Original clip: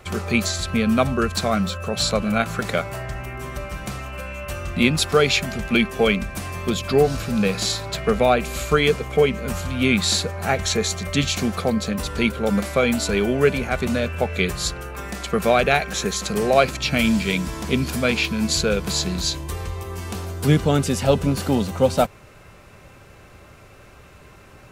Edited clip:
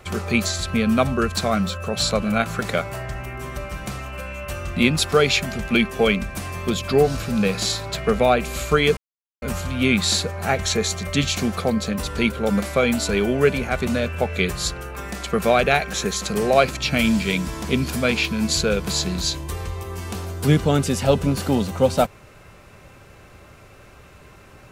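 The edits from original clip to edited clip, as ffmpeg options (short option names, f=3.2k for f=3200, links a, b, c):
-filter_complex "[0:a]asplit=3[a][b][c];[a]atrim=end=8.97,asetpts=PTS-STARTPTS,afade=t=out:st=8.966:d=0.004:c=hsin[d];[b]atrim=start=8.97:end=9.42,asetpts=PTS-STARTPTS,volume=0[e];[c]atrim=start=9.42,asetpts=PTS-STARTPTS,afade=t=in:d=0.004:c=hsin[f];[d][e][f]concat=n=3:v=0:a=1"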